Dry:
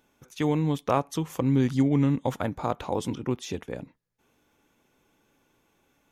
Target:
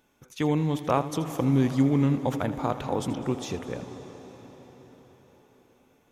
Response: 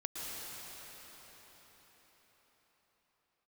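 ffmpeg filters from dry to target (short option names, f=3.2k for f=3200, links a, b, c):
-filter_complex "[0:a]asplit=2[a][b];[1:a]atrim=start_sample=2205,adelay=81[c];[b][c]afir=irnorm=-1:irlink=0,volume=-11.5dB[d];[a][d]amix=inputs=2:normalize=0"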